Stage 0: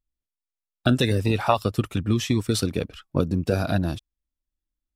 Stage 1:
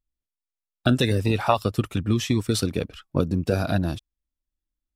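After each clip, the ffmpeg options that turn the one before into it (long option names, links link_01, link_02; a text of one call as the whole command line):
ffmpeg -i in.wav -af anull out.wav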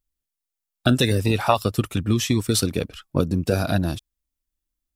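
ffmpeg -i in.wav -af "highshelf=frequency=5900:gain=8,volume=1.5dB" out.wav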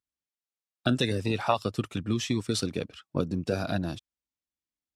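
ffmpeg -i in.wav -af "highpass=110,lowpass=7000,volume=-6.5dB" out.wav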